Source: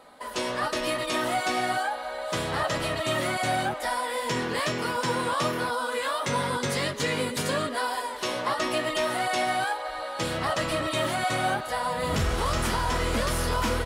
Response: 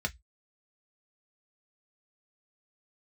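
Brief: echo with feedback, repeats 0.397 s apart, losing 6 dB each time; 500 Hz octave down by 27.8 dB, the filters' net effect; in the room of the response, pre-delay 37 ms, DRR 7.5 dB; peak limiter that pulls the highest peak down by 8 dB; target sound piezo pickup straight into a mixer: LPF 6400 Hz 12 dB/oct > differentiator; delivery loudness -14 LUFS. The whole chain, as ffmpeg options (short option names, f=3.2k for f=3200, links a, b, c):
-filter_complex "[0:a]equalizer=f=500:t=o:g=-7.5,alimiter=limit=-24dB:level=0:latency=1,aecho=1:1:397|794|1191|1588|1985|2382:0.501|0.251|0.125|0.0626|0.0313|0.0157,asplit=2[a][b];[1:a]atrim=start_sample=2205,adelay=37[c];[b][c]afir=irnorm=-1:irlink=0,volume=-12.5dB[d];[a][d]amix=inputs=2:normalize=0,lowpass=6.4k,aderivative,volume=27.5dB"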